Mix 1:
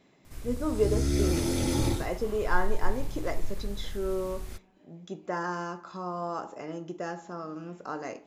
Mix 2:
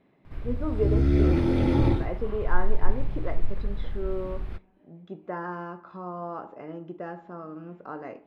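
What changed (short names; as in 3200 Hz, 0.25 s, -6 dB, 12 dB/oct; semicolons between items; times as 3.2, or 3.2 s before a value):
background +6.0 dB; master: add air absorption 450 m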